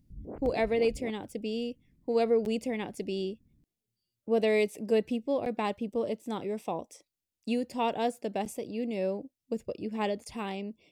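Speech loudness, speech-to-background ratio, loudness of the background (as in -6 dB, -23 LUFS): -32.0 LUFS, 12.0 dB, -44.0 LUFS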